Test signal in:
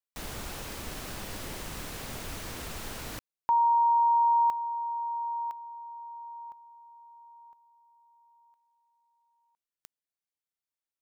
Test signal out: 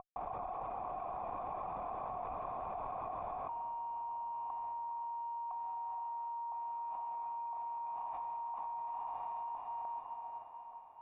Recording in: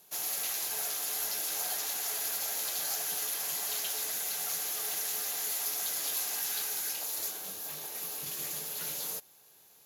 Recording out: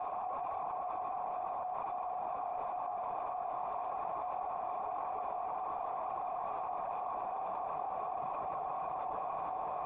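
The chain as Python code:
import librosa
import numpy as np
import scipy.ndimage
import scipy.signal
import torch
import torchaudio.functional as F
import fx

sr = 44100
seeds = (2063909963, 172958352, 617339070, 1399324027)

p1 = fx.cvsd(x, sr, bps=32000)
p2 = fx.dereverb_blind(p1, sr, rt60_s=0.83)
p3 = fx.tube_stage(p2, sr, drive_db=44.0, bias=0.25)
p4 = fx.formant_cascade(p3, sr, vowel='a')
p5 = fx.air_absorb(p4, sr, metres=79.0)
p6 = p5 + fx.echo_diffused(p5, sr, ms=507, feedback_pct=51, wet_db=-4.0, dry=0)
p7 = fx.env_flatten(p6, sr, amount_pct=100)
y = p7 * 10.0 ** (14.0 / 20.0)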